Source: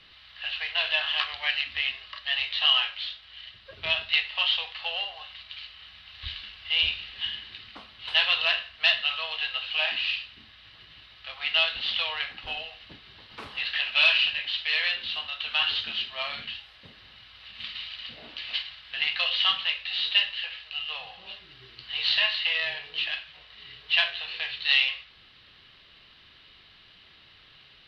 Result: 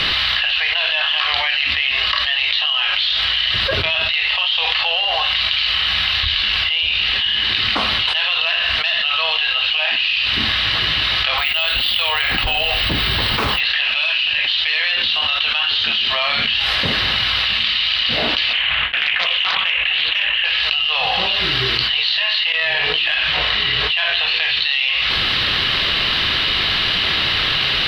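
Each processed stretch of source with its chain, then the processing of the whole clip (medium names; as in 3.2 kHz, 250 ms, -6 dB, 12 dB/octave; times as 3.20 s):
11.38–13.60 s: bass shelf 100 Hz +11.5 dB + careless resampling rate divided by 2×, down none, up hold
18.53–20.45 s: gate with hold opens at -35 dBFS, closes at -40 dBFS + steep low-pass 3 kHz + loudspeaker Doppler distortion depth 0.52 ms
22.52–24.27 s: low-pass 3.9 kHz 6 dB/octave + compression, threshold -37 dBFS
whole clip: bass shelf 410 Hz -3 dB; level flattener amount 100%; trim -1 dB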